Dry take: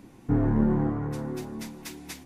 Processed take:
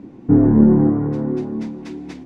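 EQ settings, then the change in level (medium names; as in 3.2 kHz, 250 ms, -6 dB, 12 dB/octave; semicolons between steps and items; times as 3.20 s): distance through air 120 m; peaking EQ 280 Hz +13.5 dB 2.6 oct; 0.0 dB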